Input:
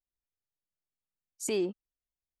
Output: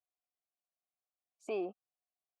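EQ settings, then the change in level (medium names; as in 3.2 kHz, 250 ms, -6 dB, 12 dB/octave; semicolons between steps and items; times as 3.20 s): vowel filter a; tilt shelf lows +5 dB, about 1.2 kHz; +7.5 dB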